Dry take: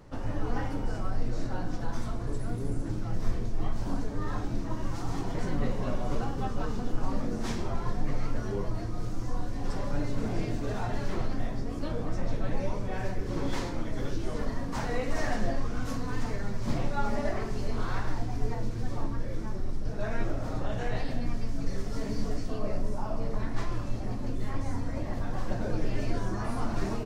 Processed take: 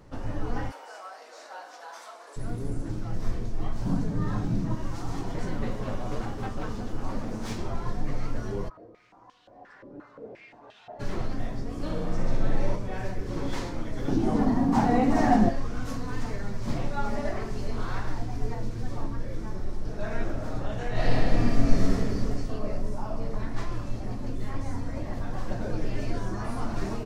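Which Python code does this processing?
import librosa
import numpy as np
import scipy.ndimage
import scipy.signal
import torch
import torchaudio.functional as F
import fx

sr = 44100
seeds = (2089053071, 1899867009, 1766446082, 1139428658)

y = fx.highpass(x, sr, hz=600.0, slope=24, at=(0.7, 2.36), fade=0.02)
y = fx.peak_eq(y, sr, hz=160.0, db=14.5, octaves=0.87, at=(3.83, 4.75))
y = fx.lower_of_two(y, sr, delay_ms=9.3, at=(5.53, 7.58))
y = fx.filter_held_bandpass(y, sr, hz=5.7, low_hz=360.0, high_hz=3100.0, at=(8.68, 10.99), fade=0.02)
y = fx.room_flutter(y, sr, wall_m=10.6, rt60_s=1.0, at=(11.73, 12.76))
y = fx.small_body(y, sr, hz=(240.0, 760.0), ring_ms=20, db=16, at=(14.08, 15.49))
y = fx.reverb_throw(y, sr, start_s=19.37, length_s=0.8, rt60_s=2.8, drr_db=5.0)
y = fx.reverb_throw(y, sr, start_s=20.91, length_s=1.0, rt60_s=2.4, drr_db=-9.0)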